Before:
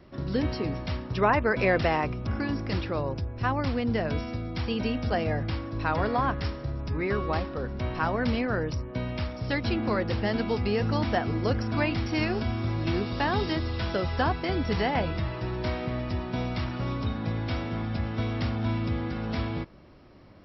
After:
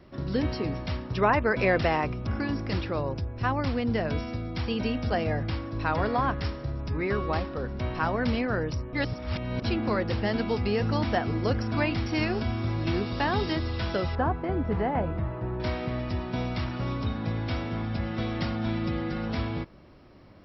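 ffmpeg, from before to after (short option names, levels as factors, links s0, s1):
-filter_complex "[0:a]asettb=1/sr,asplit=3[s0][s1][s2];[s0]atrim=end=14.154[s3];[s1]atrim=start=14.15:end=15.6,asetpts=PTS-STARTPTS,afade=t=in:d=0.004:c=qsin,afade=t=out:st=1.446:d=0.004:c=qsin,lowpass=1300[s4];[s2]atrim=start=15.596[s5];[s3][s4]acrossfade=d=0.004:c1=hsin:c2=qsin[s6];[s6][s5]acrossfade=d=0.004:c1=qsin:c2=hsin,asettb=1/sr,asplit=3[s7][s8][s9];[s7]atrim=end=18.004[s10];[s8]atrim=start=18:end=19.29,asetpts=PTS-STARTPTS,afade=t=in:d=0.004:c=qsin,afade=t=out:st=1.286:d=0.004:c=qsin,aecho=1:1:5.6:0.6,atrim=end_sample=56889[s11];[s9]atrim=start=19.286[s12];[s10][s11]acrossfade=d=0.004:c1=hsin:c2=qsin[s13];[s13][s12]acrossfade=d=0.004:c1=qsin:c2=hsin,asplit=3[s14][s15][s16];[s14]atrim=end=8.932[s17];[s15]atrim=start=8.928:end=9.622,asetpts=PTS-STARTPTS,areverse[s18];[s16]atrim=start=9.618[s19];[s17][s18]acrossfade=d=0.004:c1=hsin:c2=hsin[s20];[s20][s19]acrossfade=d=0.004:c1=hsin:c2=hsin"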